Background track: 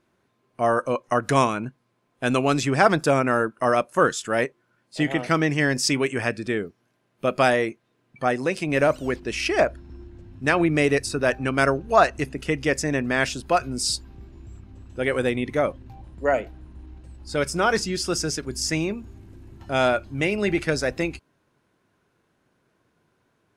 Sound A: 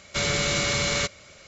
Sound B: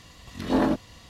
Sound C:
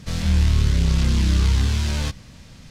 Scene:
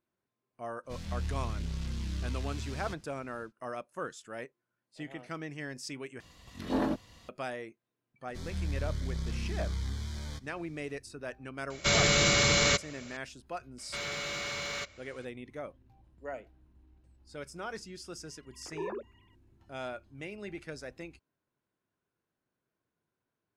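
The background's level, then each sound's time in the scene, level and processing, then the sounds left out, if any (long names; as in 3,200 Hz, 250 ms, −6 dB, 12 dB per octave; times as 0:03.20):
background track −19 dB
0:00.83: mix in C −17.5 dB, fades 0.10 s
0:06.20: overwrite with B −7.5 dB
0:08.28: mix in C −16.5 dB + Butterworth band-reject 2,700 Hz, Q 4.6
0:11.70: mix in A
0:13.78: mix in A −14 dB + mid-hump overdrive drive 13 dB, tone 3,200 Hz, clips at −12 dBFS
0:18.26: mix in B −15.5 dB + three sine waves on the formant tracks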